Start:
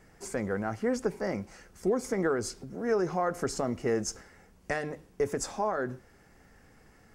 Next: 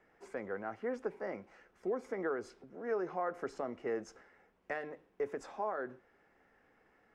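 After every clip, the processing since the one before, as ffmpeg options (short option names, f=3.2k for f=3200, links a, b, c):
-filter_complex "[0:a]acrossover=split=270 3400:gain=0.178 1 0.1[a][b][c];[a][b][c]amix=inputs=3:normalize=0,bandreject=f=4.5k:w=19,volume=-6.5dB"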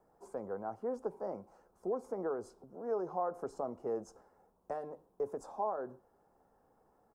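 -af "firequalizer=gain_entry='entry(160,0);entry(290,-4);entry(470,-1);entry(920,2);entry(2000,-25);entry(4100,-10);entry(9100,3)':delay=0.05:min_phase=1,volume=1.5dB"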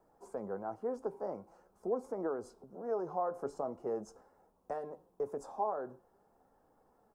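-af "flanger=delay=3:depth=4.7:regen=75:speed=0.45:shape=triangular,volume=5dB"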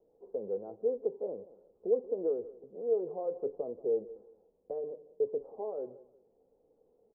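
-af "lowpass=f=470:t=q:w=4.9,aecho=1:1:181|362:0.119|0.0345,volume=-6dB"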